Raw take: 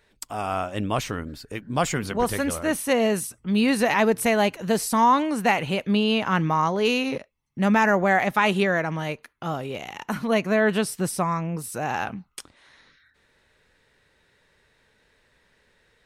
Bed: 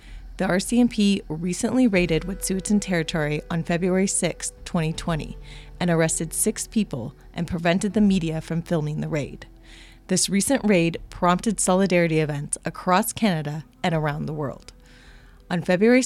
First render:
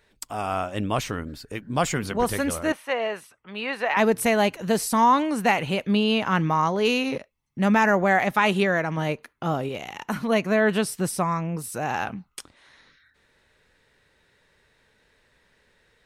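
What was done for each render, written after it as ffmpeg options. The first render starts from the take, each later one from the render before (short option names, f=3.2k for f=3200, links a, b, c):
-filter_complex "[0:a]asettb=1/sr,asplit=3[a][b][c];[a]atrim=end=2.724[d];[b]atrim=start=2.72:end=3.97,asetpts=PTS-STARTPTS,afade=t=in:d=0.004:c=qsin,afade=t=out:st=1.246:d=0.004:c=qsin,acrossover=split=510 3300:gain=0.1 1 0.1[e][f][g];[e][f][g]amix=inputs=3:normalize=0[h];[c]atrim=start=3.966[i];[d][h]acrossfade=d=0.004:c1=hsin:c2=qsin[j];[j][i]acrossfade=d=0.004:c1=qsin:c2=hsin,asettb=1/sr,asplit=3[k][l][m];[k]atrim=end=8.974[n];[l]atrim=start=8.97:end=9.69,asetpts=PTS-STARTPTS,afade=t=in:d=0.004:c=qsin,afade=t=out:st=0.716:d=0.004:c=qsin,equalizer=f=300:w=0.34:g=4.5[o];[m]atrim=start=9.686[p];[n][o]acrossfade=d=0.004:c1=hsin:c2=qsin[q];[q][p]acrossfade=d=0.004:c1=qsin:c2=hsin"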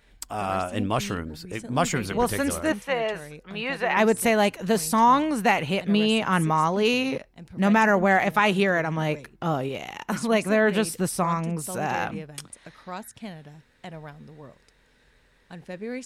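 -filter_complex "[1:a]volume=-17dB[a];[0:a][a]amix=inputs=2:normalize=0"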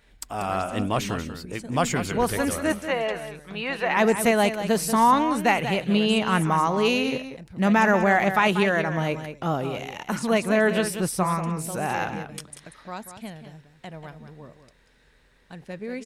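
-af "aecho=1:1:188:0.316"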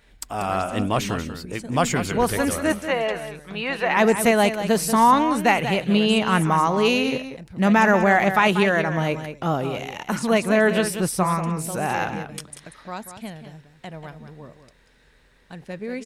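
-af "volume=2.5dB"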